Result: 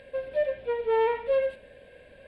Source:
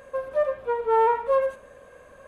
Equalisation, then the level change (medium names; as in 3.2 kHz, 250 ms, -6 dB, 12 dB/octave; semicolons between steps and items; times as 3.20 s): distance through air 100 m; treble shelf 2.1 kHz +11 dB; static phaser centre 2.8 kHz, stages 4; 0.0 dB